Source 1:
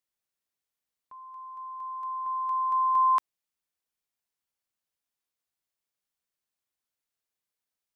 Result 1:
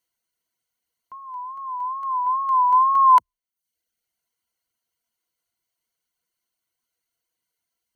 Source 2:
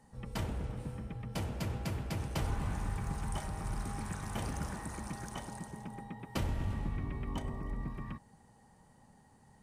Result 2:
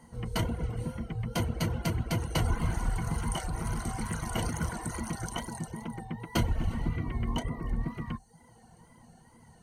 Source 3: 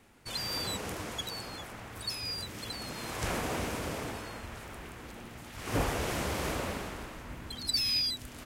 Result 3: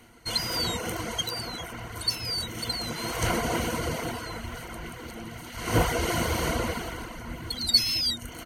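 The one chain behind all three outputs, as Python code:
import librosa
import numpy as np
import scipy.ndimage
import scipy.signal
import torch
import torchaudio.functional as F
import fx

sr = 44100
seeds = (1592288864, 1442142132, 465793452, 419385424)

y = fx.wow_flutter(x, sr, seeds[0], rate_hz=2.1, depth_cents=85.0)
y = fx.ripple_eq(y, sr, per_octave=1.9, db=10)
y = fx.dereverb_blind(y, sr, rt60_s=0.62)
y = F.gain(torch.from_numpy(y), 6.5).numpy()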